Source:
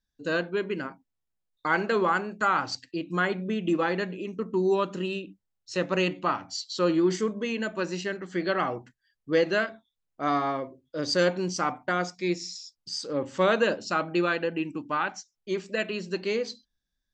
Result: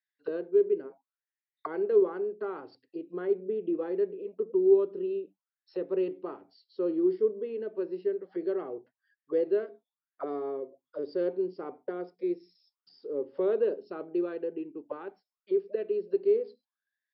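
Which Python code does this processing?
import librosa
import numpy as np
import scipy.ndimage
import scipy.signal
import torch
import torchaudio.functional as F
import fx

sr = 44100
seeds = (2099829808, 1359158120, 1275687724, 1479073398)

y = fx.brickwall_lowpass(x, sr, high_hz=5500.0)
y = fx.high_shelf(y, sr, hz=3500.0, db=11.0)
y = fx.auto_wah(y, sr, base_hz=410.0, top_hz=2000.0, q=9.4, full_db=-28.5, direction='down')
y = F.gain(torch.from_numpy(y), 7.0).numpy()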